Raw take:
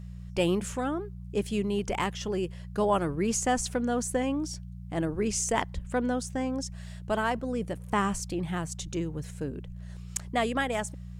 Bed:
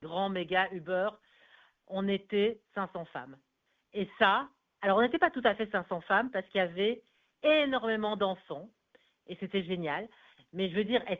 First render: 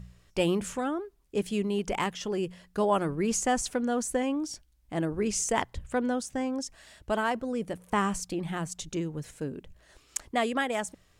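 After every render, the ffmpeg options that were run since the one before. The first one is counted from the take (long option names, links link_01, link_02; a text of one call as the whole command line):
ffmpeg -i in.wav -af "bandreject=frequency=60:width_type=h:width=4,bandreject=frequency=120:width_type=h:width=4,bandreject=frequency=180:width_type=h:width=4" out.wav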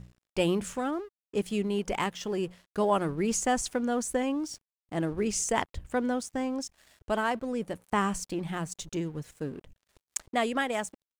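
ffmpeg -i in.wav -af "aeval=exprs='sgn(val(0))*max(abs(val(0))-0.00211,0)':channel_layout=same" out.wav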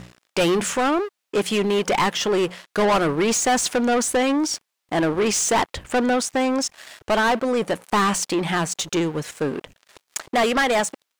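ffmpeg -i in.wav -filter_complex "[0:a]asplit=2[link_01][link_02];[link_02]highpass=frequency=720:poles=1,volume=27dB,asoftclip=type=tanh:threshold=-11dB[link_03];[link_01][link_03]amix=inputs=2:normalize=0,lowpass=frequency=5300:poles=1,volume=-6dB" out.wav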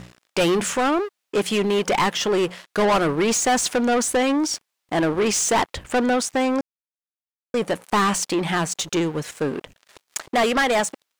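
ffmpeg -i in.wav -filter_complex "[0:a]asplit=3[link_01][link_02][link_03];[link_01]atrim=end=6.61,asetpts=PTS-STARTPTS,afade=type=out:start_time=6.606:duration=0.004:curve=hsin[link_04];[link_02]atrim=start=6.61:end=7.54,asetpts=PTS-STARTPTS,volume=0[link_05];[link_03]atrim=start=7.54,asetpts=PTS-STARTPTS,afade=type=in:duration=0.004:curve=hsin[link_06];[link_04][link_05][link_06]concat=n=3:v=0:a=1" out.wav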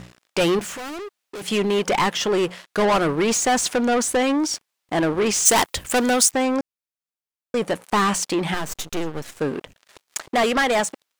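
ffmpeg -i in.wav -filter_complex "[0:a]asettb=1/sr,asplit=3[link_01][link_02][link_03];[link_01]atrim=end=0.594[link_04];[link_02]atrim=start=0.59:end=1.48,asetpts=PTS-STARTPTS,afade=type=in:duration=0.004:curve=qsin,afade=type=out:start_time=0.886:duration=0.004:curve=qsin,asoftclip=type=hard:threshold=-31.5dB[link_05];[link_03]atrim=start=1.476[link_06];[link_04][link_05]acrossfade=duration=0.004:curve1=hsin:curve2=qsin[link_07];[link_07][link_06]acrossfade=duration=0.004:curve1=qsin:curve2=hsin,asplit=3[link_08][link_09][link_10];[link_08]afade=type=out:start_time=5.45:duration=0.02[link_11];[link_09]aemphasis=mode=production:type=75kf,afade=type=in:start_time=5.45:duration=0.02,afade=type=out:start_time=6.3:duration=0.02[link_12];[link_10]afade=type=in:start_time=6.3:duration=0.02[link_13];[link_11][link_12][link_13]amix=inputs=3:normalize=0,asettb=1/sr,asplit=3[link_14][link_15][link_16];[link_14]atrim=end=8.544[link_17];[link_15]atrim=start=8.54:end=9.39,asetpts=PTS-STARTPTS,afade=type=in:duration=0.004:curve=qsin,afade=type=out:start_time=0.846:duration=0.004:curve=qsin,aeval=exprs='max(val(0),0)':channel_layout=same[link_18];[link_16]atrim=start=9.386[link_19];[link_17][link_18]acrossfade=duration=0.004:curve1=hsin:curve2=qsin[link_20];[link_20][link_19]acrossfade=duration=0.004:curve1=qsin:curve2=hsin" out.wav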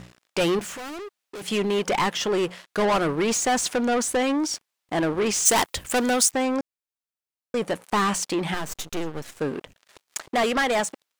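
ffmpeg -i in.wav -af "volume=-3dB" out.wav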